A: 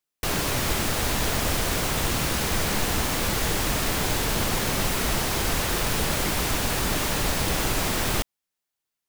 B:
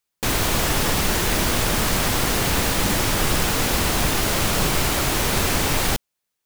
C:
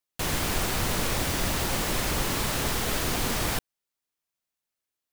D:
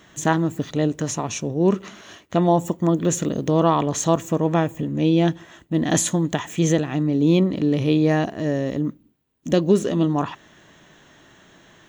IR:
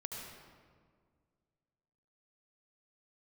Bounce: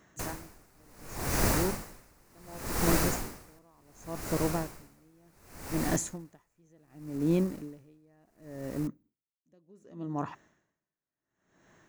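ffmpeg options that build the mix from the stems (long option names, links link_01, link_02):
-filter_complex "[0:a]aeval=exprs='(tanh(10*val(0)+0.4)-tanh(0.4))/10':channel_layout=same,adelay=650,volume=-18.5dB[link_01];[1:a]volume=-13dB[link_02];[2:a]volume=1dB[link_03];[3:a]volume=-9dB[link_04];[link_01][link_02][link_03][link_04]amix=inputs=4:normalize=0,equalizer=frequency=3300:width=2.2:gain=-12,aeval=exprs='val(0)*pow(10,-36*(0.5-0.5*cos(2*PI*0.68*n/s))/20)':channel_layout=same"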